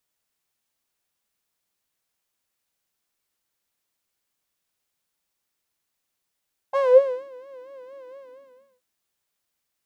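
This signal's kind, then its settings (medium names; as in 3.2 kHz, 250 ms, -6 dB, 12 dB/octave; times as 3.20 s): synth patch with vibrato C6, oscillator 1 saw, oscillator 2 square, interval -12 st, oscillator 2 level -1 dB, noise -15 dB, filter bandpass, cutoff 210 Hz, Q 8.6, filter envelope 2 oct, filter decay 0.47 s, filter sustain 30%, attack 26 ms, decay 0.54 s, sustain -17 dB, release 0.65 s, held 1.43 s, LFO 4.3 Hz, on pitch 97 cents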